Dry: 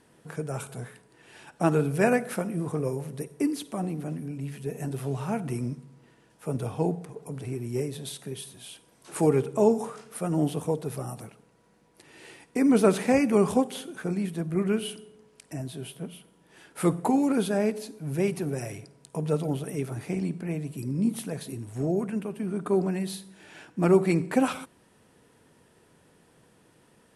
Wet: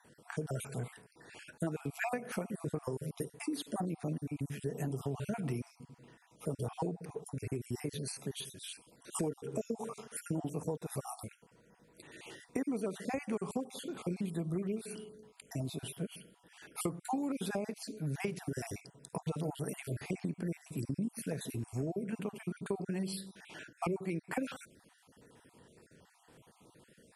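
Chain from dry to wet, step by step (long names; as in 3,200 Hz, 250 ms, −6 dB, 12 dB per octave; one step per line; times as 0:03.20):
time-frequency cells dropped at random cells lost 39%
downward compressor 16 to 1, threshold −32 dBFS, peak gain reduction 18.5 dB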